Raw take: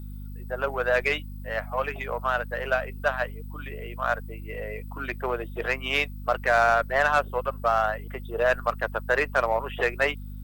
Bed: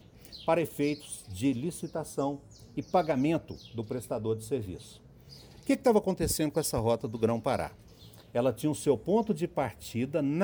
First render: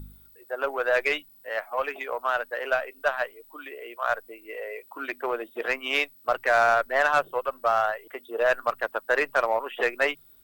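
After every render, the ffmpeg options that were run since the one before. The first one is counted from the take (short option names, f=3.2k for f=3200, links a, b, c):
-af "bandreject=f=50:t=h:w=4,bandreject=f=100:t=h:w=4,bandreject=f=150:t=h:w=4,bandreject=f=200:t=h:w=4,bandreject=f=250:t=h:w=4"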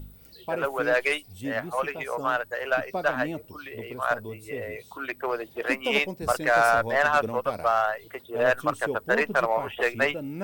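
-filter_complex "[1:a]volume=-5.5dB[a];[0:a][a]amix=inputs=2:normalize=0"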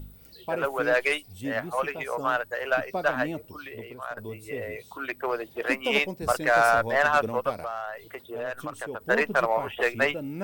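-filter_complex "[0:a]asettb=1/sr,asplit=3[a][b][c];[a]atrim=end=7.524[d];[b]atrim=start=7.52:end=9.01,asetpts=PTS-STARTPTS,afade=t=in:d=0.004:c=qsin,afade=t=out:st=1.486:d=0.004:c=qsin,acompressor=threshold=-32dB:ratio=3:attack=3.2:release=140:knee=1:detection=peak[e];[c]atrim=start=9.006[f];[d][e]acrossfade=d=0.004:c1=hsin:c2=qsin[g];[g][f]acrossfade=d=0.004:c1=qsin:c2=hsin,asplit=2[h][i];[h]atrim=end=4.17,asetpts=PTS-STARTPTS,afade=t=out:st=3.64:d=0.53:silence=0.188365[j];[i]atrim=start=4.17,asetpts=PTS-STARTPTS,afade=t=in:d=0.004:c=hsin:silence=0.188365[k];[j][k]concat=n=2:v=0:a=1"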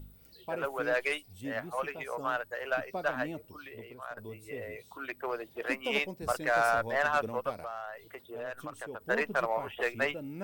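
-af "volume=-6.5dB"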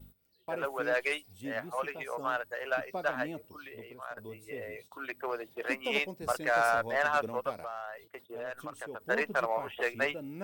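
-af "agate=range=-15dB:threshold=-51dB:ratio=16:detection=peak,lowshelf=f=98:g=-8"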